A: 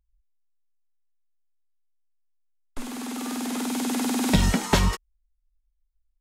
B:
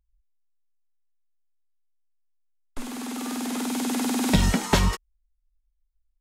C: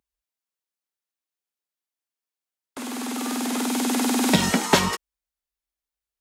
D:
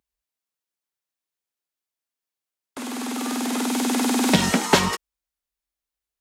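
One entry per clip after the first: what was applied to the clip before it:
no processing that can be heard
high-pass filter 210 Hz 12 dB per octave; level +4.5 dB
highs frequency-modulated by the lows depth 0.12 ms; level +1 dB

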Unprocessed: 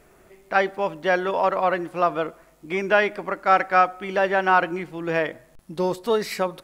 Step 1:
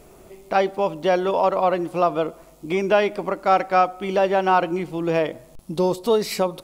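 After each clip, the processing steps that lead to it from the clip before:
parametric band 1,700 Hz −11.5 dB 0.82 octaves
in parallel at 0 dB: downward compressor, threshold −32 dBFS, peak gain reduction 16 dB
on the sum: level +1.5 dB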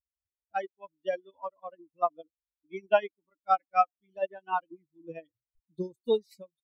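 spectral dynamics exaggerated over time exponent 3
expander for the loud parts 2.5 to 1, over −36 dBFS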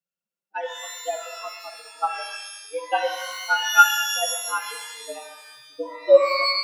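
frequency shifter +120 Hz
hollow resonant body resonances 550/1,400/2,700 Hz, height 15 dB, ringing for 45 ms
reverb with rising layers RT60 1 s, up +12 semitones, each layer −2 dB, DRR 4.5 dB
level −1.5 dB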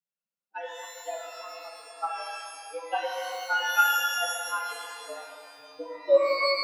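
rectangular room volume 200 cubic metres, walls hard, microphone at 0.37 metres
level −7.5 dB

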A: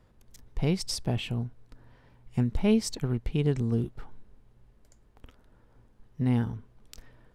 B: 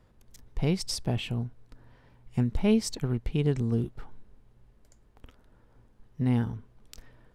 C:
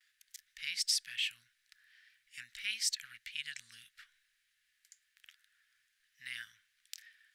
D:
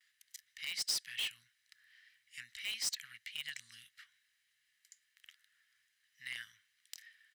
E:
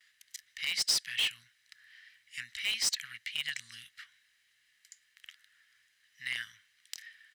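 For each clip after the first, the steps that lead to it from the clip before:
no processing that can be heard
noise gate with hold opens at −55 dBFS; elliptic high-pass filter 1,700 Hz, stop band 50 dB; in parallel at −2 dB: brickwall limiter −31 dBFS, peak gain reduction 11 dB
high-pass filter 70 Hz 12 dB per octave; comb filter 1 ms, depth 32%; in parallel at −7.5 dB: wrap-around overflow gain 29 dB; on the sum: level −4 dB
high-shelf EQ 10,000 Hz −7 dB; level +8 dB

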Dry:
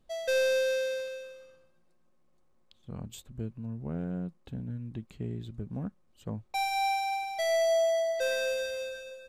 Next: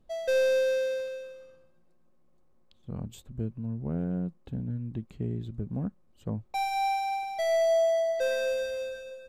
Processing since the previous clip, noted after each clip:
tilt shelving filter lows +4 dB, about 1,100 Hz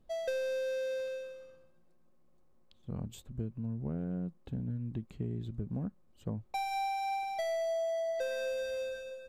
downward compressor 6 to 1, threshold −30 dBFS, peak gain reduction 9 dB
level −1.5 dB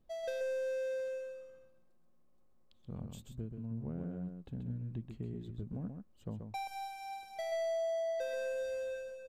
single-tap delay 132 ms −6 dB
level −5 dB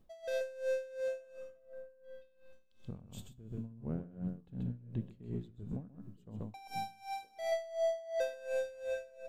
tuned comb filter 93 Hz, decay 1.2 s, harmonics all, mix 60%
echo through a band-pass that steps 485 ms, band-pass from 160 Hz, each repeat 1.4 octaves, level −11 dB
tremolo with a sine in dB 2.8 Hz, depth 19 dB
level +12.5 dB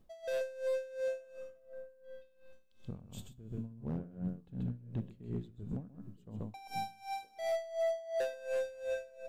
gain into a clipping stage and back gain 29.5 dB
level +1 dB

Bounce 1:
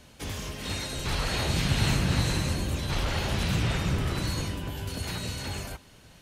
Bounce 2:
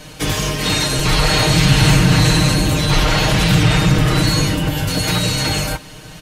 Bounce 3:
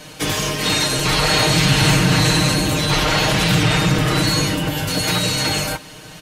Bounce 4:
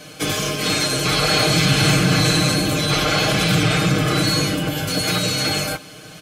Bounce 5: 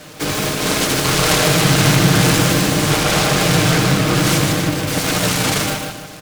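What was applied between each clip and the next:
comb filter 6.5 ms, depth 93%; in parallel at +2.5 dB: brickwall limiter −22.5 dBFS, peak gain reduction 11 dB; on the sum: level +7 dB
low-shelf EQ 100 Hz −11.5 dB
notch comb filter 930 Hz
repeating echo 148 ms, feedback 37%, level −3.5 dB; short delay modulated by noise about 1,500 Hz, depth 0.086 ms; level +1.5 dB

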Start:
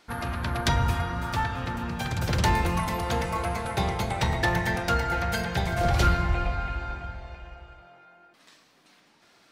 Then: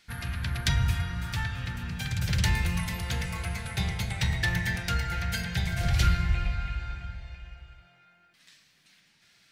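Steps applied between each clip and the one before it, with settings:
flat-topped bell 550 Hz −13.5 dB 2.7 octaves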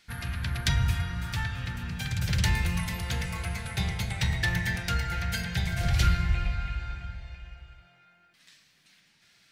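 no processing that can be heard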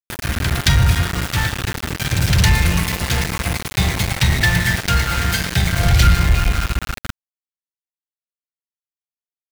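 centre clipping without the shift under −30.5 dBFS
leveller curve on the samples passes 1
level +8.5 dB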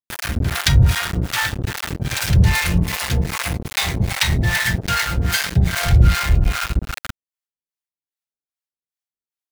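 two-band tremolo in antiphase 2.5 Hz, depth 100%, crossover 600 Hz
level +3 dB

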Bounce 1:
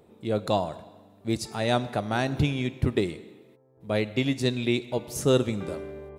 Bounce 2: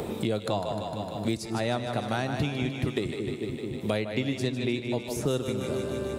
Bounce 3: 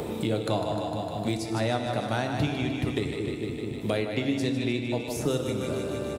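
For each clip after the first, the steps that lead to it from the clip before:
echo with a time of its own for lows and highs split 400 Hz, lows 219 ms, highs 152 ms, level −7.5 dB; multiband upward and downward compressor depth 100%; level −4 dB
far-end echo of a speakerphone 280 ms, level −13 dB; feedback delay network reverb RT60 1.5 s, low-frequency decay 1.3×, high-frequency decay 0.75×, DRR 6.5 dB

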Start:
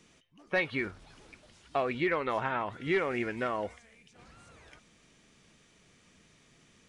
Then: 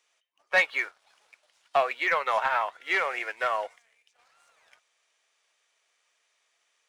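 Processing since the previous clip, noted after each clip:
high-pass filter 610 Hz 24 dB per octave
leveller curve on the samples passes 1
expander for the loud parts 1.5 to 1, over −49 dBFS
level +6.5 dB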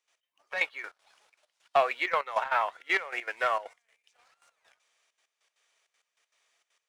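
gate pattern ".x.xxxx.x." 197 BPM −12 dB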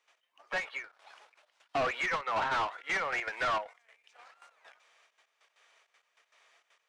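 mid-hump overdrive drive 24 dB, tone 1,400 Hz, clips at −12 dBFS
soft clipping −22.5 dBFS, distortion −12 dB
every ending faded ahead of time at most 190 dB per second
level −4 dB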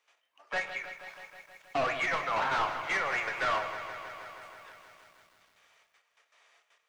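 rectangular room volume 110 cubic metres, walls mixed, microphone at 0.34 metres
feedback echo at a low word length 159 ms, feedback 80%, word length 10 bits, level −11 dB

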